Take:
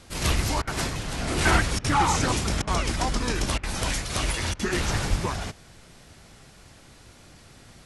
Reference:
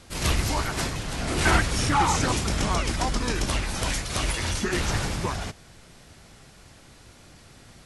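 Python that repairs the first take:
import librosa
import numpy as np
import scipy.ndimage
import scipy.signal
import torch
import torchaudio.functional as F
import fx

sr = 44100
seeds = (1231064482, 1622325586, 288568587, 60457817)

y = fx.fix_declip(x, sr, threshold_db=-10.0)
y = fx.highpass(y, sr, hz=140.0, slope=24, at=(5.09, 5.21), fade=0.02)
y = fx.fix_interpolate(y, sr, at_s=(0.62, 1.79, 2.62, 3.58, 4.54), length_ms=52.0)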